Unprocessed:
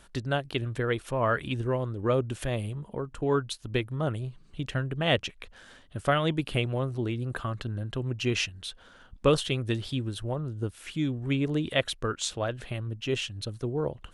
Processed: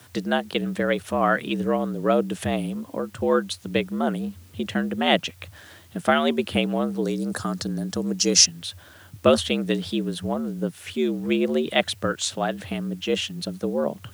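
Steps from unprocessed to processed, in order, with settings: 7.02–8.46 s: resonant high shelf 3.9 kHz +11 dB, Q 3; added noise white -62 dBFS; frequency shift +74 Hz; trim +5 dB

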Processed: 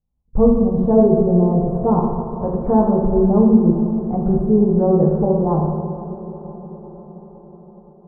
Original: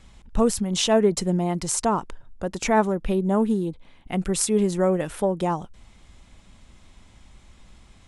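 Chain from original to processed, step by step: gate -41 dBFS, range -36 dB; bass shelf 210 Hz +6 dB; in parallel at +0.5 dB: peak limiter -15.5 dBFS, peak gain reduction 9.5 dB; 1.97–2.76 s: on the sum: companded quantiser 4-bit; inverse Chebyshev low-pass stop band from 2.4 kHz, stop band 50 dB; echo that smears into a reverb 476 ms, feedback 63%, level -14 dB; reverberation RT60 1.6 s, pre-delay 3 ms, DRR -1.5 dB; trim -3.5 dB

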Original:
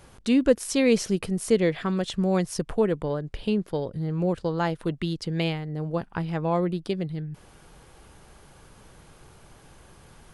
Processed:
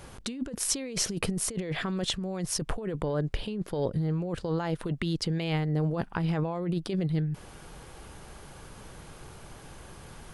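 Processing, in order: compressor with a negative ratio -30 dBFS, ratio -1

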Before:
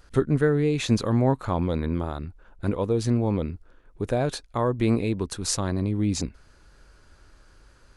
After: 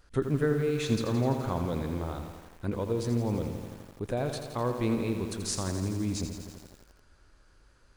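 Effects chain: bit-crushed delay 84 ms, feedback 80%, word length 7-bit, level -8 dB; trim -6.5 dB

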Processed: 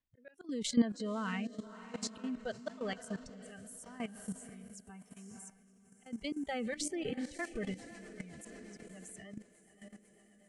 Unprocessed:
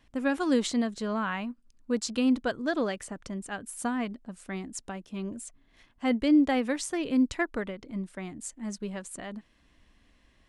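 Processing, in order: spectral noise reduction 23 dB; slow attack 471 ms; echo that smears into a reverb 539 ms, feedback 56%, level -12 dB; rotary cabinet horn 0.9 Hz, later 8 Hz, at 6.94 s; level held to a coarse grid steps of 14 dB; trim +5.5 dB

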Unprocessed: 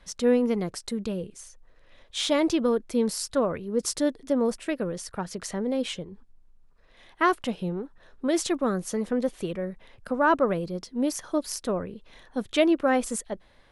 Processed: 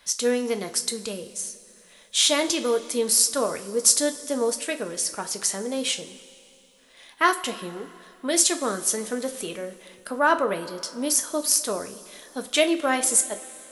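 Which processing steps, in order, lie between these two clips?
RIAA curve recording; two-slope reverb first 0.28 s, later 2.8 s, from -18 dB, DRR 6 dB; trim +1.5 dB

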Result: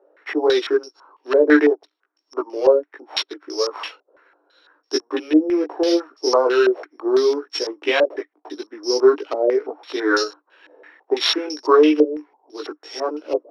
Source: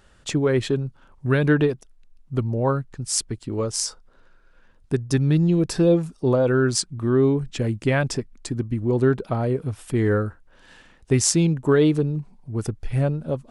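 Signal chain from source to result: sorted samples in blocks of 8 samples; chorus voices 6, 0.84 Hz, delay 18 ms, depth 2.4 ms; rippled Chebyshev high-pass 290 Hz, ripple 3 dB; step-sequenced low-pass 6 Hz 570–5200 Hz; trim +7 dB

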